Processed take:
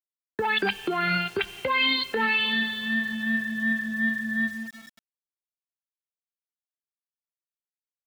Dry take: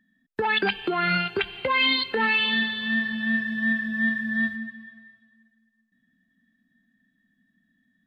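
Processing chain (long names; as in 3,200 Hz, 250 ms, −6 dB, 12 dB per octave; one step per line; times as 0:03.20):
centre clipping without the shift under −41.5 dBFS
level −1.5 dB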